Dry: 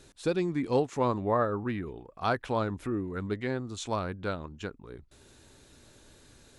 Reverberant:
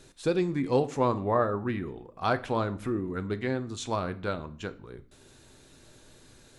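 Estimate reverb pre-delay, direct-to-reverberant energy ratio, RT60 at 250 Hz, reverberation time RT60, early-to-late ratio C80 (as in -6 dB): 5 ms, 10.0 dB, 0.65 s, 0.50 s, 21.5 dB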